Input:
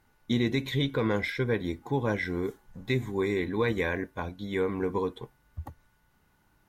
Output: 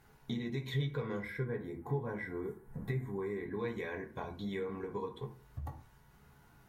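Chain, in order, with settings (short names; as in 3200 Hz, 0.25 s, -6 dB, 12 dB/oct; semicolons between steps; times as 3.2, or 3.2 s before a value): compressor 6:1, threshold -42 dBFS, peak gain reduction 18.5 dB; 1.22–3.59 band shelf 4200 Hz -11.5 dB; reverb RT60 0.45 s, pre-delay 3 ms, DRR 0.5 dB; gain +2 dB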